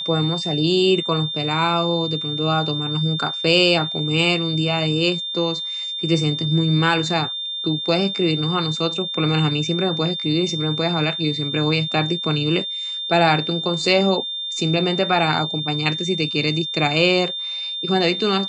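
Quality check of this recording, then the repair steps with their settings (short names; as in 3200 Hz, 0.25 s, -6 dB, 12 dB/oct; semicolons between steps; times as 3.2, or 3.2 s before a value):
tone 3600 Hz -25 dBFS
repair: notch 3600 Hz, Q 30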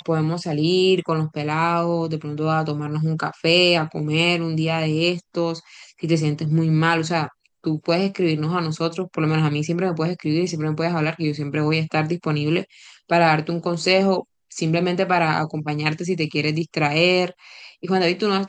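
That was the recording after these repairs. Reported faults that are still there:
none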